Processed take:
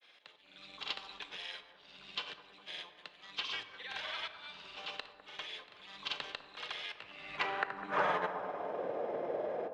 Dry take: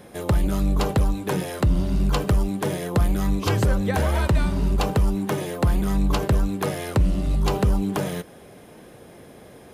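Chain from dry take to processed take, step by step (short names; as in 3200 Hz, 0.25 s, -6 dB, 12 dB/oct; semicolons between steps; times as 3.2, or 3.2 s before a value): low shelf 140 Hz +10 dB; grains, pitch spread up and down by 0 st; auto swell 0.4 s; high-pass sweep 3400 Hz -> 560 Hz, 6.83–8.82; in parallel at +2.5 dB: soft clip -22.5 dBFS, distortion -13 dB; on the sum: tape spacing loss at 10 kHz 43 dB; on a send: analogue delay 0.202 s, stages 2048, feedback 65%, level -12 dB; on the sum: shoebox room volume 520 m³, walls mixed, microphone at 0.39 m; gain +1.5 dB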